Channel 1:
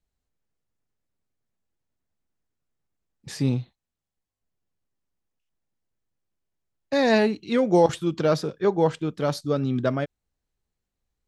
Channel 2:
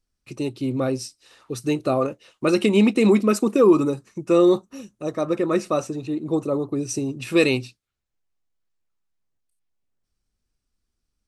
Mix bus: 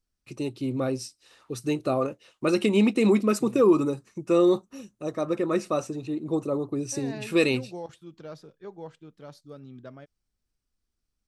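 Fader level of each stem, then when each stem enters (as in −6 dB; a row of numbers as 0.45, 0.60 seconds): −20.0, −4.0 decibels; 0.00, 0.00 seconds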